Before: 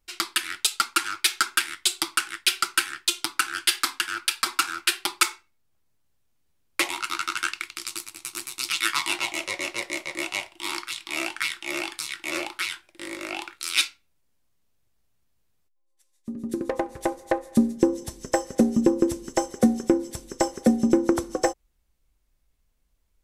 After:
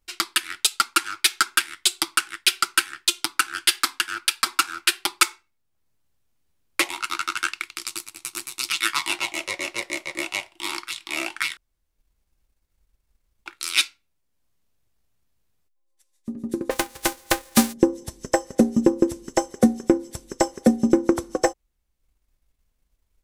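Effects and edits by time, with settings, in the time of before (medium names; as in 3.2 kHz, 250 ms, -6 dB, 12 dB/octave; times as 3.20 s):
11.57–13.46 s: room tone
16.70–17.72 s: formants flattened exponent 0.3
whole clip: transient shaper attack +3 dB, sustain -4 dB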